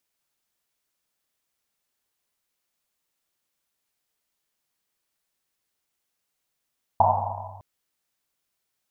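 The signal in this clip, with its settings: Risset drum length 0.61 s, pitch 98 Hz, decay 2.27 s, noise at 820 Hz, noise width 340 Hz, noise 75%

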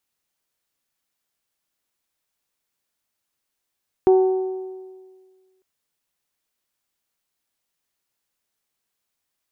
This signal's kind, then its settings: metal hit bell, lowest mode 376 Hz, decay 1.70 s, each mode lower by 11.5 dB, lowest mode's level -9.5 dB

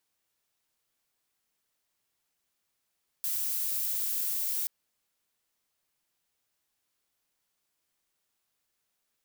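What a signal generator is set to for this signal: noise violet, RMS -31 dBFS 1.43 s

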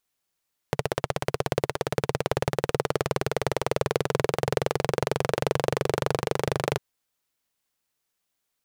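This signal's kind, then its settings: single-cylinder engine model, changing speed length 6.05 s, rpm 1900, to 3000, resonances 140/440 Hz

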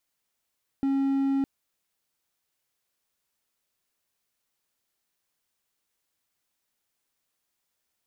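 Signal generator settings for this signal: tone triangle 273 Hz -20 dBFS 0.61 s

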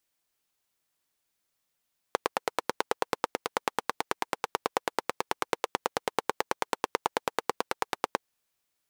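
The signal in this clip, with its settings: single-cylinder engine model, steady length 6.06 s, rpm 1100, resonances 480/850 Hz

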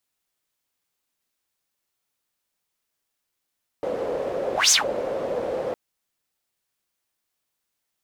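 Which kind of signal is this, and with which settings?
whoosh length 1.91 s, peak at 0.88, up 0.17 s, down 0.15 s, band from 520 Hz, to 6600 Hz, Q 6, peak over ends 11.5 dB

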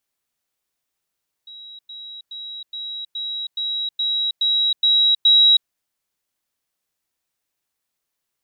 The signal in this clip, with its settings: level ladder 3860 Hz -36.5 dBFS, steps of 3 dB, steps 10, 0.32 s 0.10 s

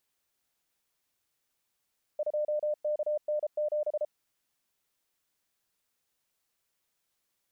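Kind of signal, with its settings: Morse "2KN7" 33 wpm 601 Hz -26.5 dBFS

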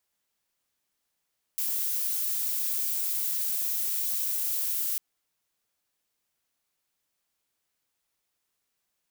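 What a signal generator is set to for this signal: noise violet, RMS -29 dBFS 3.40 s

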